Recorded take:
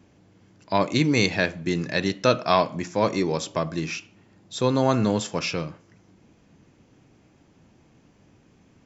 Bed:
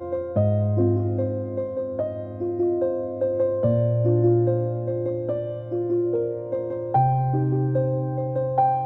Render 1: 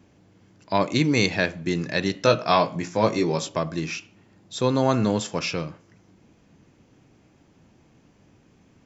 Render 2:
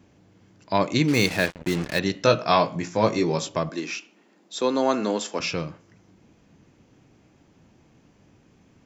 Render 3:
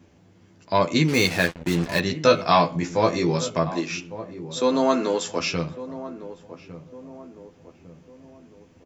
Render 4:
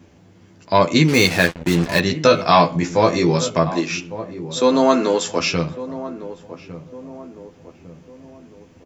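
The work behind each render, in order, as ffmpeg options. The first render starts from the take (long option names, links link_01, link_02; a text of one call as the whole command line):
ffmpeg -i in.wav -filter_complex "[0:a]asettb=1/sr,asplit=3[link_01][link_02][link_03];[link_01]atrim=end=2.124[link_04];[link_02]atrim=start=2.12:end=3.49,asetpts=PTS-STARTPTS,afade=type=in:duration=0.004:curve=qsin,afade=type=out:start_time=1.366:duration=0.004:curve=qsin,asplit=2[link_05][link_06];[link_06]adelay=18,volume=-6dB[link_07];[link_05][link_07]amix=inputs=2:normalize=0,atrim=end_sample=60417[link_08];[link_03]atrim=start=3.486[link_09];[link_04][link_08]acrossfade=duration=0.004:curve1=hsin:curve2=qsin[link_10];[link_10][link_09]acrossfade=duration=0.004:curve1=qsin:curve2=hsin" out.wav
ffmpeg -i in.wav -filter_complex "[0:a]asettb=1/sr,asplit=3[link_01][link_02][link_03];[link_01]atrim=end=1.084[link_04];[link_02]atrim=start=1.08:end=1.99,asetpts=PTS-STARTPTS,afade=type=in:duration=0.004:curve=qsin,afade=type=out:start_time=0.906:duration=0.004:curve=qsin,acrusher=bits=4:mix=0:aa=0.5[link_05];[link_03]atrim=start=1.986[link_06];[link_04][link_05]acrossfade=duration=0.004:curve1=hsin:curve2=qsin[link_07];[link_07][link_06]acrossfade=duration=0.004:curve1=qsin:curve2=hsin,asettb=1/sr,asplit=3[link_08][link_09][link_10];[link_08]atrim=end=3.694[link_11];[link_09]atrim=start=3.69:end=5.4,asetpts=PTS-STARTPTS,afade=type=in:duration=0.004:curve=qsin,afade=type=out:start_time=1.706:duration=0.004:curve=qsin,highpass=frequency=240:width=0.5412,highpass=frequency=240:width=1.3066[link_12];[link_10]atrim=start=5.396[link_13];[link_11][link_12]acrossfade=duration=0.004:curve1=hsin:curve2=qsin[link_14];[link_14][link_13]acrossfade=duration=0.004:curve1=qsin:curve2=hsin" out.wav
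ffmpeg -i in.wav -filter_complex "[0:a]asplit=2[link_01][link_02];[link_02]adelay=12,volume=-4dB[link_03];[link_01][link_03]amix=inputs=2:normalize=0,asplit=2[link_04][link_05];[link_05]adelay=1154,lowpass=frequency=830:poles=1,volume=-13dB,asplit=2[link_06][link_07];[link_07]adelay=1154,lowpass=frequency=830:poles=1,volume=0.5,asplit=2[link_08][link_09];[link_09]adelay=1154,lowpass=frequency=830:poles=1,volume=0.5,asplit=2[link_10][link_11];[link_11]adelay=1154,lowpass=frequency=830:poles=1,volume=0.5,asplit=2[link_12][link_13];[link_13]adelay=1154,lowpass=frequency=830:poles=1,volume=0.5[link_14];[link_04][link_06][link_08][link_10][link_12][link_14]amix=inputs=6:normalize=0" out.wav
ffmpeg -i in.wav -af "volume=5.5dB,alimiter=limit=-1dB:level=0:latency=1" out.wav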